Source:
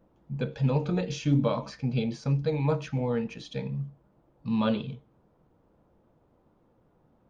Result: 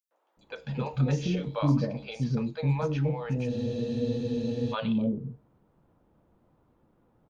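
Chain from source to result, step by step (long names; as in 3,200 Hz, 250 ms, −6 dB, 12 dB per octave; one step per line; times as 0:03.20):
three-band delay without the direct sound highs, mids, lows 110/370 ms, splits 530/5,600 Hz
frozen spectrum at 0:03.51, 1.22 s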